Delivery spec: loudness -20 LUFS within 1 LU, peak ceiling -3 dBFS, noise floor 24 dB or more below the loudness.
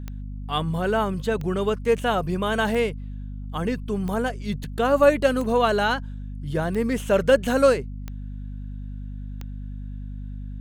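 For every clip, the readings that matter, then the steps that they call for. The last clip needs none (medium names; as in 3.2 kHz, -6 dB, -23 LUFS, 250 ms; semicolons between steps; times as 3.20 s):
clicks found 8; hum 50 Hz; highest harmonic 250 Hz; hum level -31 dBFS; loudness -23.0 LUFS; peak level -5.0 dBFS; loudness target -20.0 LUFS
-> de-click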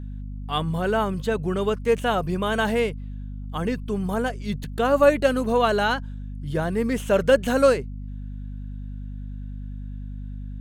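clicks found 0; hum 50 Hz; highest harmonic 250 Hz; hum level -31 dBFS
-> hum notches 50/100/150/200/250 Hz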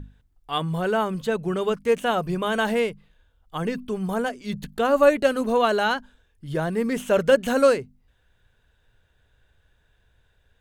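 hum not found; loudness -23.5 LUFS; peak level -5.0 dBFS; loudness target -20.0 LUFS
-> trim +3.5 dB; peak limiter -3 dBFS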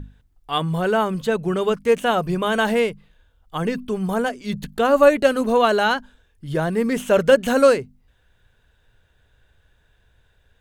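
loudness -20.0 LUFS; peak level -3.0 dBFS; noise floor -62 dBFS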